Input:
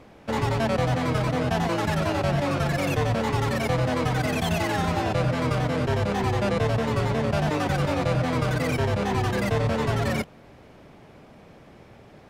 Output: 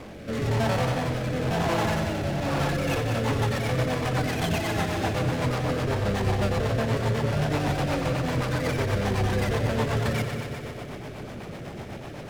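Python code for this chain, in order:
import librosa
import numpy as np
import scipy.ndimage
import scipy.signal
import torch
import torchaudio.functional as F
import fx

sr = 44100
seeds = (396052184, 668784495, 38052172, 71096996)

y = fx.power_curve(x, sr, exponent=0.5)
y = fx.echo_heads(y, sr, ms=61, heads='first and third', feedback_pct=73, wet_db=-8.5)
y = fx.rotary_switch(y, sr, hz=1.0, then_hz=8.0, switch_at_s=2.46)
y = y * librosa.db_to_amplitude(-6.5)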